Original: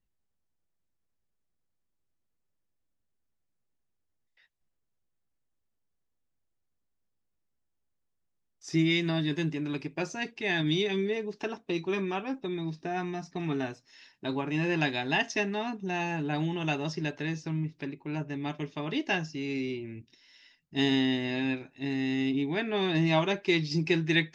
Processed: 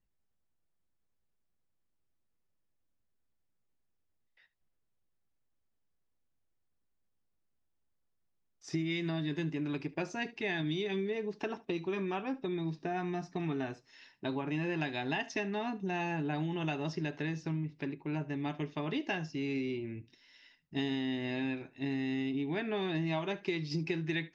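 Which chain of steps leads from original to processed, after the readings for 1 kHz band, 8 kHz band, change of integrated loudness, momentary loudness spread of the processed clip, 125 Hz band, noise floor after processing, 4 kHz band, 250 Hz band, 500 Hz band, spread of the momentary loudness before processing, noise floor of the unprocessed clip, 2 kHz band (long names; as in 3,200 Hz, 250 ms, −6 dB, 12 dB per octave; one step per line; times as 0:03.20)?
−4.5 dB, can't be measured, −5.5 dB, 4 LU, −4.5 dB, −78 dBFS, −9.0 dB, −5.0 dB, −4.5 dB, 10 LU, −79 dBFS, −6.5 dB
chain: high-shelf EQ 5,300 Hz −10 dB
downward compressor, threshold −31 dBFS, peak gain reduction 10 dB
on a send: single-tap delay 73 ms −20.5 dB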